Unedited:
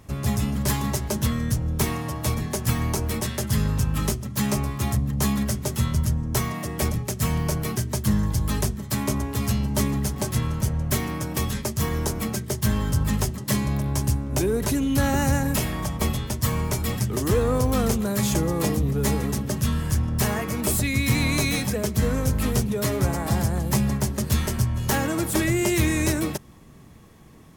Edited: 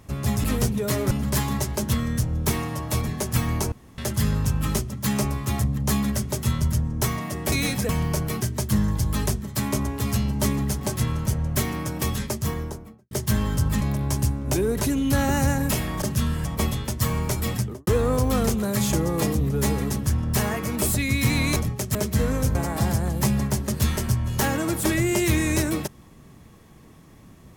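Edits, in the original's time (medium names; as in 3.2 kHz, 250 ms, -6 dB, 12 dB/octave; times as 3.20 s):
3.05–3.31 s: room tone
6.85–7.24 s: swap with 21.41–21.78 s
11.61–12.46 s: studio fade out
13.16–13.66 s: delete
16.98–17.29 s: studio fade out
19.48–19.91 s: move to 15.87 s
22.38–23.05 s: move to 0.44 s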